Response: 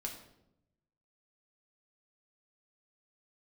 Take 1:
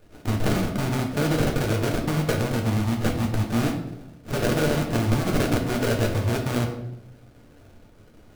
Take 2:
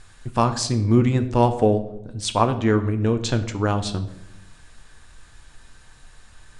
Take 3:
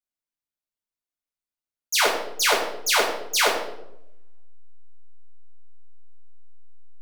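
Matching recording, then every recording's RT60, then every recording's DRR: 1; 0.80 s, 0.85 s, 0.80 s; 0.0 dB, 7.5 dB, -6.0 dB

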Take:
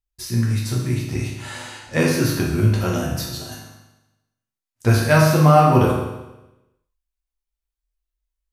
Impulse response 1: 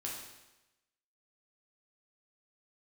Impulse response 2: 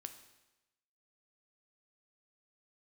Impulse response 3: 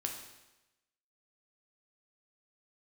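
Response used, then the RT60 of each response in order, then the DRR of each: 1; 1.0 s, 1.0 s, 1.0 s; -3.5 dB, 7.5 dB, 1.5 dB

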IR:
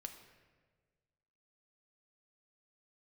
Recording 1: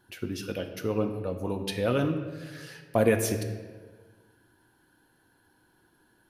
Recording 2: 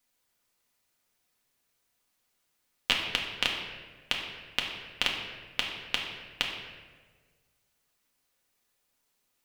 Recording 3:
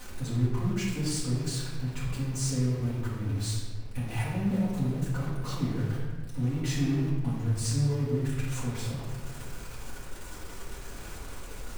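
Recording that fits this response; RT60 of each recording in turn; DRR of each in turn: 1; 1.5 s, 1.5 s, 1.5 s; 5.0 dB, -1.0 dB, -8.5 dB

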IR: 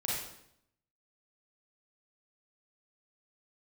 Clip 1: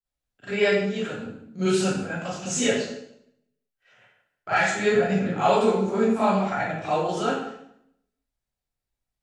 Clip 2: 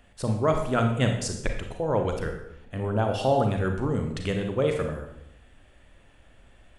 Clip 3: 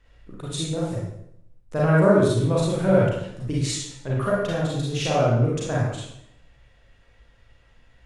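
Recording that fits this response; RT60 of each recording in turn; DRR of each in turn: 3; 0.75 s, 0.75 s, 0.75 s; -15.5 dB, 3.5 dB, -6.0 dB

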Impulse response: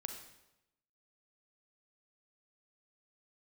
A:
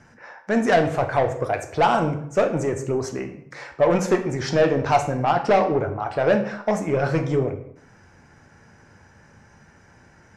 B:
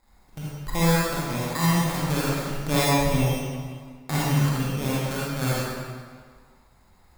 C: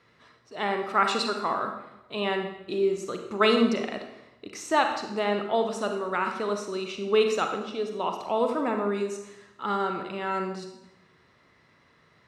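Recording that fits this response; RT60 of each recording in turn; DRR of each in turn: C; 0.70 s, 1.8 s, 0.90 s; 5.5 dB, -8.0 dB, 4.5 dB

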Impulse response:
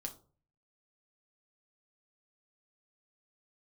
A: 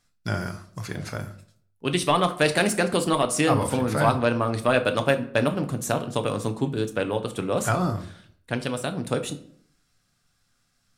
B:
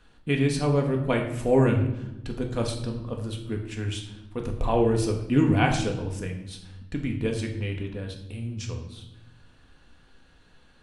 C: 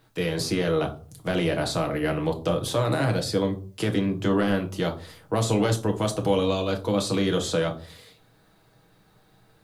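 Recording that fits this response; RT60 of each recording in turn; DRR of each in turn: C; 0.60 s, 0.95 s, 0.40 s; 6.5 dB, 1.5 dB, 3.0 dB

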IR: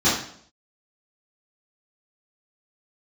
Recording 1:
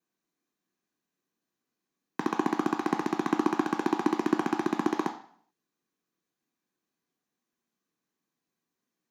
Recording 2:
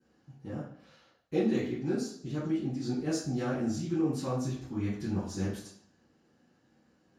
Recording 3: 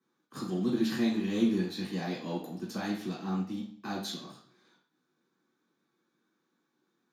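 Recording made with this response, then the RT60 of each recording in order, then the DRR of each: 2; 0.60 s, 0.60 s, 0.60 s; 5.0 dB, -12.5 dB, -3.5 dB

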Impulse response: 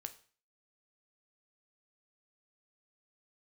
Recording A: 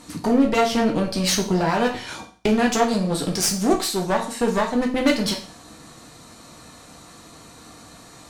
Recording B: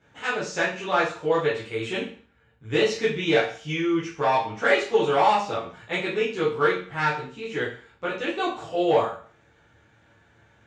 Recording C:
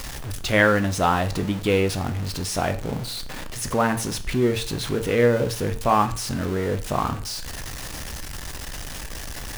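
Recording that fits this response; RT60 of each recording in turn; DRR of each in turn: C; 0.40 s, 0.40 s, 0.40 s; 0.5 dB, -9.0 dB, 8.5 dB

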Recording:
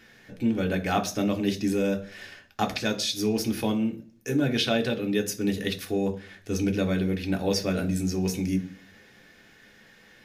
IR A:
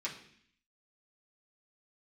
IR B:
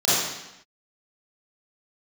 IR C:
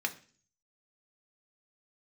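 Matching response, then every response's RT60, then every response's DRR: C; 0.60 s, 0.90 s, 0.40 s; -6.5 dB, -12.0 dB, 3.5 dB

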